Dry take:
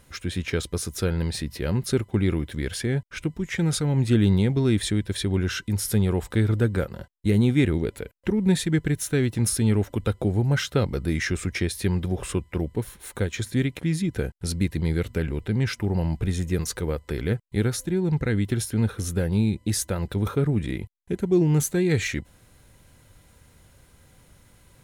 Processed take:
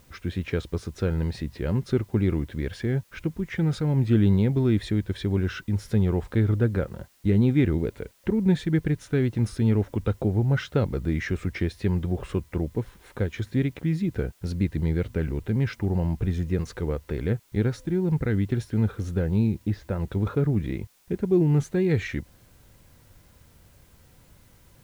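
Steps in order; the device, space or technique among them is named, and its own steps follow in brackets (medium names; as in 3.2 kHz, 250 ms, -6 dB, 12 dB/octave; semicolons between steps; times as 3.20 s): 19.47–20.00 s: distance through air 250 m; cassette deck with a dirty head (tape spacing loss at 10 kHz 23 dB; wow and flutter; white noise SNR 37 dB)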